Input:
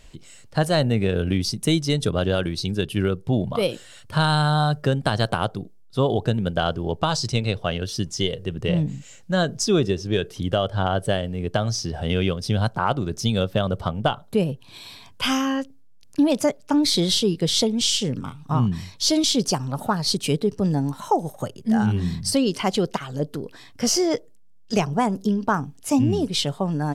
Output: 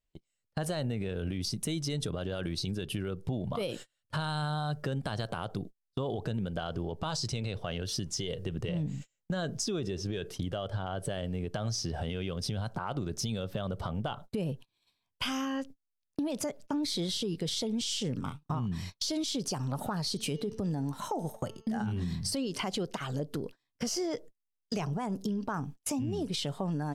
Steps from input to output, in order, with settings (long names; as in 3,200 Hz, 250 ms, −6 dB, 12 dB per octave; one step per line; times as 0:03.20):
noise gate −36 dBFS, range −37 dB
0:20.09–0:22.31: hum removal 222 Hz, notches 29
brickwall limiter −18.5 dBFS, peak gain reduction 11 dB
downward compressor 3 to 1, threshold −32 dBFS, peak gain reduction 8.5 dB